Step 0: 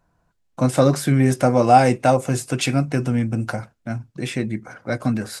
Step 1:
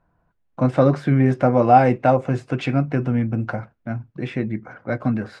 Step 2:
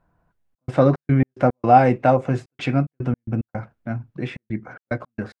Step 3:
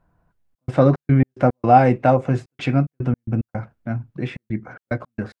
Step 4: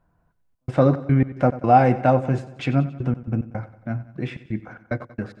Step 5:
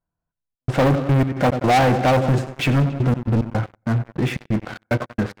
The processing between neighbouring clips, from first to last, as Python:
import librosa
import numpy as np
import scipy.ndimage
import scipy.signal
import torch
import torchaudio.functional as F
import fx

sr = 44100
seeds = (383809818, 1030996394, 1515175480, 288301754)

y1 = scipy.signal.sosfilt(scipy.signal.butter(2, 2200.0, 'lowpass', fs=sr, output='sos'), x)
y2 = fx.step_gate(y1, sr, bpm=110, pattern='xxxx.xx.x.x.xx', floor_db=-60.0, edge_ms=4.5)
y3 = fx.low_shelf(y2, sr, hz=200.0, db=3.5)
y4 = fx.echo_feedback(y3, sr, ms=92, feedback_pct=54, wet_db=-16.0)
y4 = y4 * 10.0 ** (-2.0 / 20.0)
y5 = fx.leveller(y4, sr, passes=5)
y5 = y5 * 10.0 ** (-8.5 / 20.0)